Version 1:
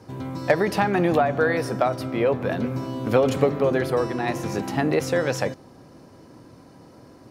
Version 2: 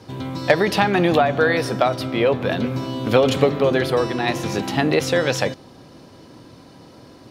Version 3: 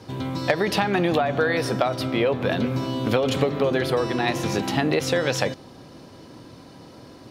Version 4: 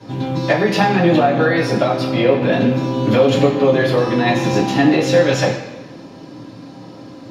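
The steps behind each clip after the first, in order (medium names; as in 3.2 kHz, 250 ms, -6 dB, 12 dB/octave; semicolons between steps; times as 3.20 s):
peaking EQ 3.5 kHz +9.5 dB 0.98 oct; trim +3 dB
compression 4:1, threshold -18 dBFS, peak gain reduction 7.5 dB
reverberation RT60 1.1 s, pre-delay 3 ms, DRR -9.5 dB; trim -9 dB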